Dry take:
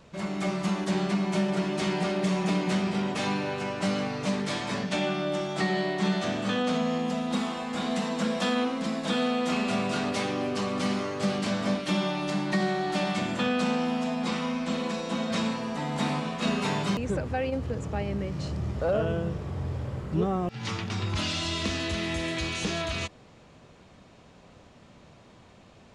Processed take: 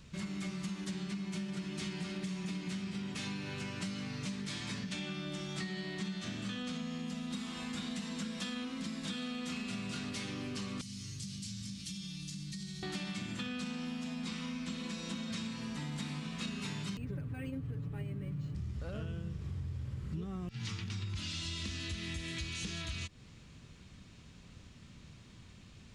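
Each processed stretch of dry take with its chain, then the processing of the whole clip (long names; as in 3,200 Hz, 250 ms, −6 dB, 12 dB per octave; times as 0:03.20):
0:10.81–0:12.83: drawn EQ curve 130 Hz 0 dB, 570 Hz −29 dB, 1,400 Hz −21 dB, 5,700 Hz +2 dB + downward compressor 3 to 1, threshold −40 dBFS
0:16.98–0:18.55: head-to-tape spacing loss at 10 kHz 24 dB + comb filter 7 ms, depth 99% + linearly interpolated sample-rate reduction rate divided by 4×
whole clip: guitar amp tone stack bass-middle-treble 6-0-2; downward compressor, threshold −53 dBFS; level +16 dB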